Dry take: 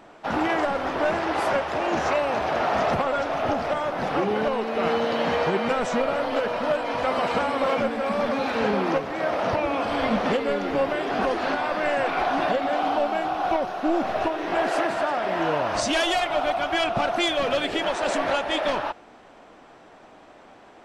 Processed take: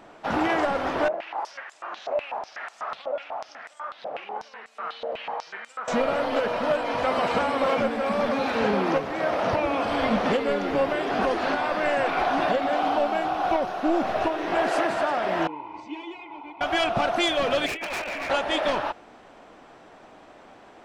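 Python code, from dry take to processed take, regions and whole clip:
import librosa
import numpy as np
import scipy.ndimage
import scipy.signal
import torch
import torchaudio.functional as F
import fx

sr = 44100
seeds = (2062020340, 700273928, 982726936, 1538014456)

y = fx.chain(x, sr, fx.doubler(ms=45.0, db=-11.5),
    fx.filter_held_bandpass(hz=8.1, low_hz=600.0, high_hz=7800.0), at=(1.08, 5.88))
y = fx.chain(y, sr, fx.vowel_filter(vowel='u'),
    fx.high_shelf(hz=3600.0, db=-6.5),
    fx.comb(ms=2.0, depth=0.75), at=(15.47, 16.61))
y = fx.chain(y, sr, fx.lowpass_res(hz=2400.0, q=7.2),
    fx.over_compress(threshold_db=-26.0, ratio=-0.5),
    fx.overload_stage(gain_db=28.0), at=(17.66, 18.3))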